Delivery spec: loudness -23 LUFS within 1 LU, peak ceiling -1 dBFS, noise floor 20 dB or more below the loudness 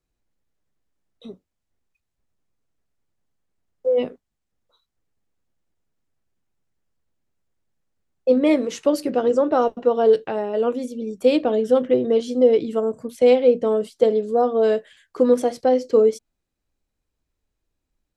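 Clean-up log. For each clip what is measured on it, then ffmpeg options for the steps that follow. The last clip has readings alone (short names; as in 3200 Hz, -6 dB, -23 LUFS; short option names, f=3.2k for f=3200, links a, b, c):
loudness -20.0 LUFS; peak -4.5 dBFS; loudness target -23.0 LUFS
-> -af "volume=-3dB"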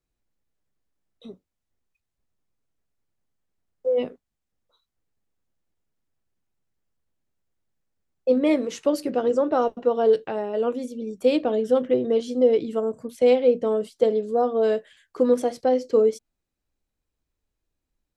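loudness -23.0 LUFS; peak -7.5 dBFS; noise floor -83 dBFS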